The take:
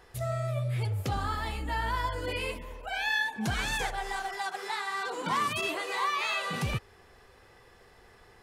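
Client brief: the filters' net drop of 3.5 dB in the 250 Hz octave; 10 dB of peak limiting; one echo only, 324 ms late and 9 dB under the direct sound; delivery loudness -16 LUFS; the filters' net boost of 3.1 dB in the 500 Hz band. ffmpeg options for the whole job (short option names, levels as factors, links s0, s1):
-af "equalizer=f=250:t=o:g=-7,equalizer=f=500:t=o:g=5.5,alimiter=level_in=1.58:limit=0.0631:level=0:latency=1,volume=0.631,aecho=1:1:324:0.355,volume=9.44"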